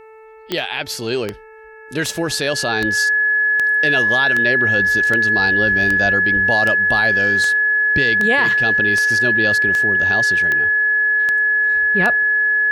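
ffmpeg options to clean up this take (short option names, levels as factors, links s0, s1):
-af "adeclick=t=4,bandreject=f=439.6:t=h:w=4,bandreject=f=879.2:t=h:w=4,bandreject=f=1318.8:t=h:w=4,bandreject=f=1758.4:t=h:w=4,bandreject=f=2198:t=h:w=4,bandreject=f=2637.6:t=h:w=4,bandreject=f=1700:w=30"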